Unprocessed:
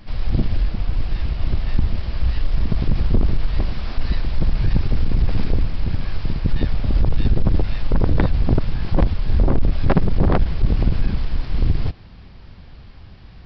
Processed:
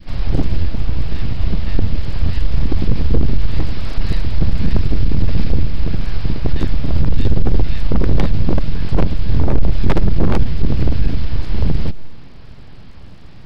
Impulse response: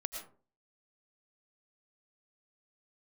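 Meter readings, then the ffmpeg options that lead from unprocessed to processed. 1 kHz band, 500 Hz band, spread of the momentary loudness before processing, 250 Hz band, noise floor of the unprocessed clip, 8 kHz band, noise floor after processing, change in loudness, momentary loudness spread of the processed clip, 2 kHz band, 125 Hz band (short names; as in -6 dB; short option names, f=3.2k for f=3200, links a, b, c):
+0.5 dB, +2.0 dB, 7 LU, +3.0 dB, -41 dBFS, n/a, -33 dBFS, +2.0 dB, 5 LU, +1.5 dB, +2.5 dB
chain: -filter_complex "[0:a]adynamicequalizer=threshold=0.0112:dfrequency=810:dqfactor=0.71:tfrequency=810:tqfactor=0.71:attack=5:release=100:ratio=0.375:range=3.5:mode=cutabove:tftype=bell,aeval=exprs='abs(val(0))':c=same,asplit=2[a][b];[1:a]atrim=start_sample=2205,lowpass=1.1k[c];[b][c]afir=irnorm=-1:irlink=0,volume=-16dB[d];[a][d]amix=inputs=2:normalize=0,volume=3.5dB"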